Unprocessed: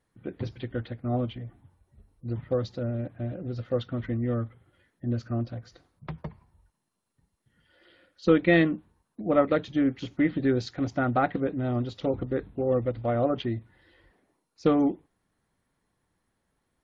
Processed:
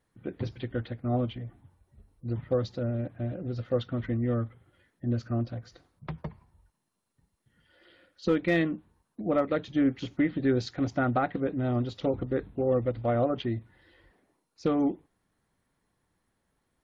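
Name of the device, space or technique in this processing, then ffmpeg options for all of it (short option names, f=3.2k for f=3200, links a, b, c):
clipper into limiter: -af "asoftclip=type=hard:threshold=-11dB,alimiter=limit=-16dB:level=0:latency=1:release=340"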